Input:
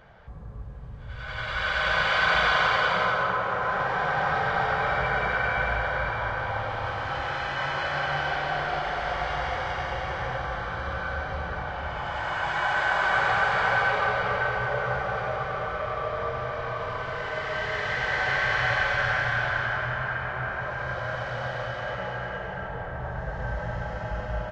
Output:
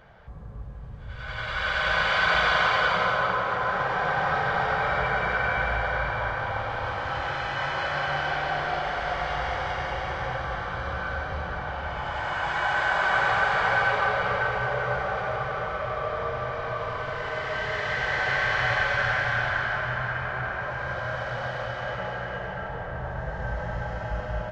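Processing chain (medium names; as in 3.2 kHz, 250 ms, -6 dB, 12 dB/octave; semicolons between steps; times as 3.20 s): echo whose repeats swap between lows and highs 194 ms, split 1.2 kHz, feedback 80%, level -13 dB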